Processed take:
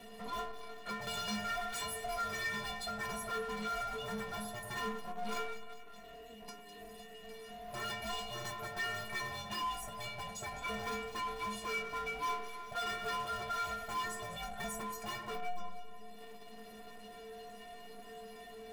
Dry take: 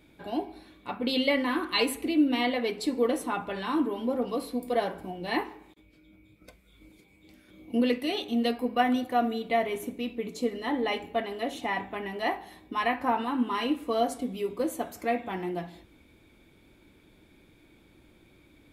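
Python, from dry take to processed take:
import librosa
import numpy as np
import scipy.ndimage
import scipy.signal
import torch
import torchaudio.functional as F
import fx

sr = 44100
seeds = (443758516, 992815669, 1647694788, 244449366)

p1 = (np.mod(10.0 ** (25.5 / 20.0) * x + 1.0, 2.0) - 1.0) / 10.0 ** (25.5 / 20.0)
p2 = x + F.gain(torch.from_numpy(p1), -10.5).numpy()
p3 = p2 * np.sin(2.0 * np.pi * 360.0 * np.arange(len(p2)) / sr)
p4 = 10.0 ** (-26.0 / 20.0) * (np.abs((p3 / 10.0 ** (-26.0 / 20.0) + 3.0) % 4.0 - 2.0) - 1.0)
p5 = fx.stiff_resonator(p4, sr, f0_hz=210.0, decay_s=0.69, stiffness=0.03)
p6 = p5 + fx.echo_alternate(p5, sr, ms=101, hz=2000.0, feedback_pct=59, wet_db=-11, dry=0)
p7 = fx.power_curve(p6, sr, exponent=0.7)
p8 = fx.band_squash(p7, sr, depth_pct=40)
y = F.gain(torch.from_numpy(p8), 8.0).numpy()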